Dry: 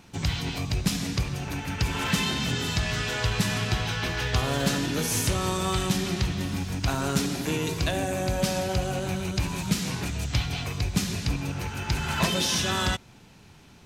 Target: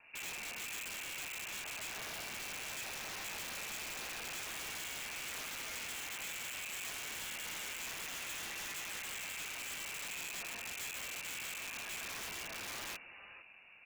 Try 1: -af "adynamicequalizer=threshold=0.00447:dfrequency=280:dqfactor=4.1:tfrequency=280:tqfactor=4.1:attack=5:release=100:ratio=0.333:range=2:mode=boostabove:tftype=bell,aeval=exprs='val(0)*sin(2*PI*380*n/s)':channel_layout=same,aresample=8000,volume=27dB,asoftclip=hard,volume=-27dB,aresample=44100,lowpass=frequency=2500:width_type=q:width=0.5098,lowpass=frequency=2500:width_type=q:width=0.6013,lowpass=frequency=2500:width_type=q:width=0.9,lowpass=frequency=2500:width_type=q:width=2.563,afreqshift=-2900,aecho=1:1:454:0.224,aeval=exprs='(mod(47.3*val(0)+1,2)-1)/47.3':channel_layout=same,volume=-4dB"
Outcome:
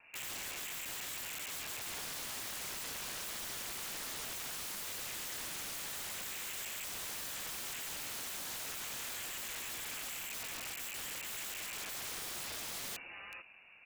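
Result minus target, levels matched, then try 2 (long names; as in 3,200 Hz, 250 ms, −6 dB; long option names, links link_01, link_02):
gain into a clipping stage and back: distortion −5 dB
-af "adynamicequalizer=threshold=0.00447:dfrequency=280:dqfactor=4.1:tfrequency=280:tqfactor=4.1:attack=5:release=100:ratio=0.333:range=2:mode=boostabove:tftype=bell,aeval=exprs='val(0)*sin(2*PI*380*n/s)':channel_layout=same,aresample=8000,volume=36dB,asoftclip=hard,volume=-36dB,aresample=44100,lowpass=frequency=2500:width_type=q:width=0.5098,lowpass=frequency=2500:width_type=q:width=0.6013,lowpass=frequency=2500:width_type=q:width=0.9,lowpass=frequency=2500:width_type=q:width=2.563,afreqshift=-2900,aecho=1:1:454:0.224,aeval=exprs='(mod(47.3*val(0)+1,2)-1)/47.3':channel_layout=same,volume=-4dB"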